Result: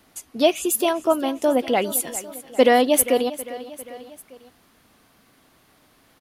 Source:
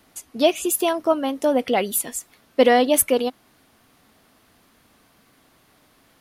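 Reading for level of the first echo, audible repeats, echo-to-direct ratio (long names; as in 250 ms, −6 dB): −16.0 dB, 3, −14.5 dB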